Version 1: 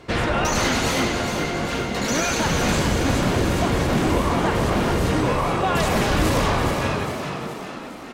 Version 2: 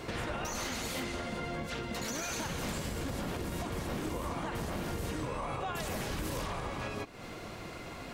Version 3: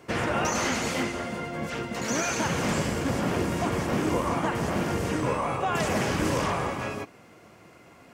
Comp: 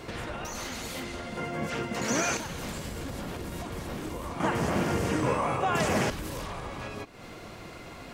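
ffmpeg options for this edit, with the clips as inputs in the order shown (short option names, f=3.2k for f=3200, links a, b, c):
-filter_complex "[2:a]asplit=2[a][b];[1:a]asplit=3[c][d][e];[c]atrim=end=1.372[f];[a]atrim=start=1.368:end=2.372[g];[d]atrim=start=2.368:end=4.402[h];[b]atrim=start=4.398:end=6.102[i];[e]atrim=start=6.098[j];[f][g]acrossfade=d=0.004:c1=hsin:c2=hsin[k];[k][h]acrossfade=d=0.004:c1=hsin:c2=hsin[l];[l][i]acrossfade=d=0.004:c1=hsin:c2=hsin[m];[m][j]acrossfade=d=0.004:c1=hsin:c2=hsin"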